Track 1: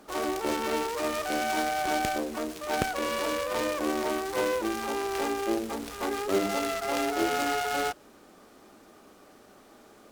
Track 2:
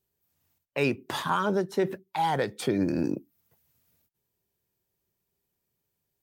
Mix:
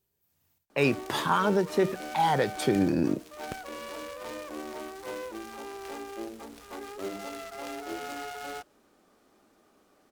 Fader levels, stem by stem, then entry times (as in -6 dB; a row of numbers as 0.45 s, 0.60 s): -10.0 dB, +1.5 dB; 0.70 s, 0.00 s